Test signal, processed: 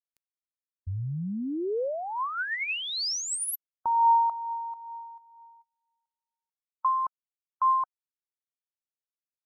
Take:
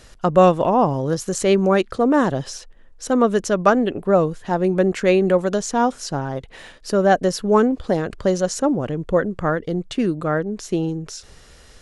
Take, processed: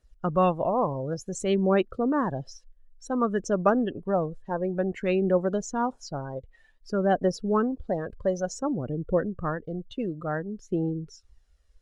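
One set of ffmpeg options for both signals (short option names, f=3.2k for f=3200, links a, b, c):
-af "afftdn=nr=21:nf=-29,aphaser=in_gain=1:out_gain=1:delay=2:decay=0.37:speed=0.55:type=triangular,volume=-8.5dB"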